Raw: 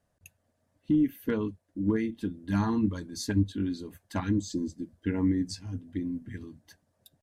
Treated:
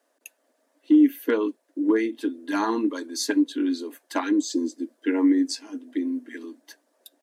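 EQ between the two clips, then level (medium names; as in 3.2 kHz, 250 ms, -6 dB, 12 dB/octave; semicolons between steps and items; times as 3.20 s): steep high-pass 260 Hz 72 dB/octave; band-stop 750 Hz, Q 23; +8.5 dB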